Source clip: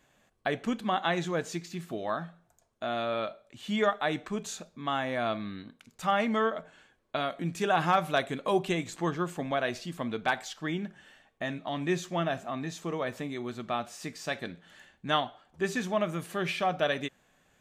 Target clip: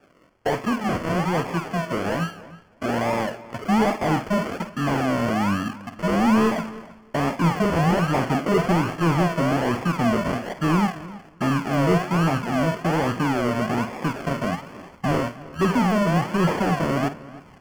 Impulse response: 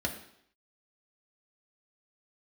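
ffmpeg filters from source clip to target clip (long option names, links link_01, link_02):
-filter_complex "[0:a]asubboost=boost=10:cutoff=200,acrusher=samples=42:mix=1:aa=0.000001:lfo=1:lforange=25.2:lforate=1.2,asplit=2[link_01][link_02];[link_02]highpass=frequency=720:poles=1,volume=24dB,asoftclip=type=tanh:threshold=-10.5dB[link_03];[link_01][link_03]amix=inputs=2:normalize=0,lowpass=frequency=2200:poles=1,volume=-6dB,asuperstop=centerf=3800:order=4:qfactor=4.7,asplit=2[link_04][link_05];[link_05]adelay=50,volume=-12.5dB[link_06];[link_04][link_06]amix=inputs=2:normalize=0,asplit=2[link_07][link_08];[link_08]adelay=313,lowpass=frequency=3400:poles=1,volume=-18dB,asplit=2[link_09][link_10];[link_10]adelay=313,lowpass=frequency=3400:poles=1,volume=0.16[link_11];[link_07][link_09][link_11]amix=inputs=3:normalize=0"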